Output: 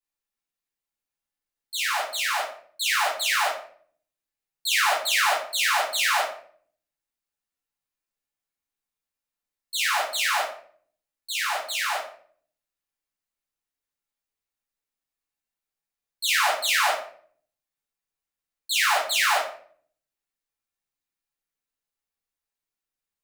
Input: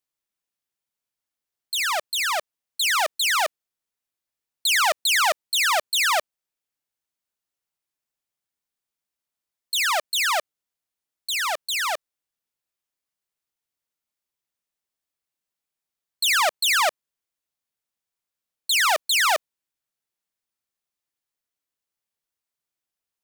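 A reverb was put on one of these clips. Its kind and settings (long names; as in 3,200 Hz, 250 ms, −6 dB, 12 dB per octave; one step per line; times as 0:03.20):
rectangular room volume 59 cubic metres, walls mixed, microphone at 2.2 metres
level −12 dB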